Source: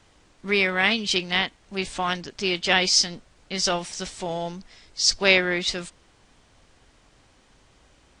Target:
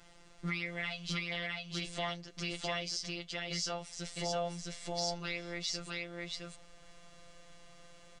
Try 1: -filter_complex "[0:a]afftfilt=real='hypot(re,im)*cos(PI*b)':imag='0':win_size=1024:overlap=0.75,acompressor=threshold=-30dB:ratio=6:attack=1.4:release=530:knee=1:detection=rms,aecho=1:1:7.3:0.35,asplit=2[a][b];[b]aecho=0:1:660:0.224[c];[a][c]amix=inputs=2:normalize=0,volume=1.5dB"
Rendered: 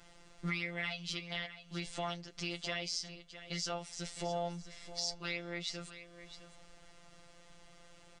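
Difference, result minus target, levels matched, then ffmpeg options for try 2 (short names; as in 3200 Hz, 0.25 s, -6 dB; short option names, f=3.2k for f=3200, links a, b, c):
echo-to-direct -11.5 dB
-filter_complex "[0:a]afftfilt=real='hypot(re,im)*cos(PI*b)':imag='0':win_size=1024:overlap=0.75,acompressor=threshold=-30dB:ratio=6:attack=1.4:release=530:knee=1:detection=rms,aecho=1:1:7.3:0.35,asplit=2[a][b];[b]aecho=0:1:660:0.841[c];[a][c]amix=inputs=2:normalize=0,volume=1.5dB"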